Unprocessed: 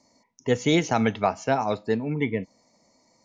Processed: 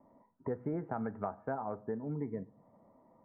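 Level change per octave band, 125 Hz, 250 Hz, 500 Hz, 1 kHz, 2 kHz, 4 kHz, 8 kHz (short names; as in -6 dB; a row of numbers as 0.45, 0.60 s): -12.5 dB, -13.5 dB, -13.5 dB, -14.0 dB, -21.0 dB, under -40 dB, n/a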